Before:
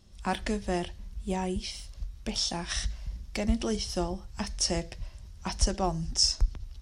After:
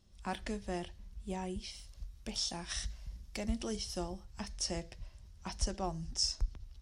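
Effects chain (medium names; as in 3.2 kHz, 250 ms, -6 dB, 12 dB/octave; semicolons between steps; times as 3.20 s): 1.87–4.23 s: treble shelf 6.5 kHz +6 dB; trim -8.5 dB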